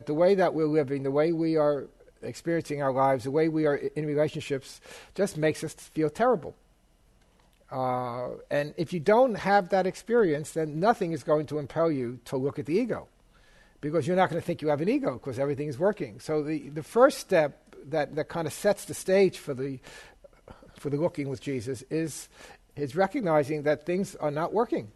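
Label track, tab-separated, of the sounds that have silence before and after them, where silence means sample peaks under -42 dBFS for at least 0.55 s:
7.720000	13.040000	sound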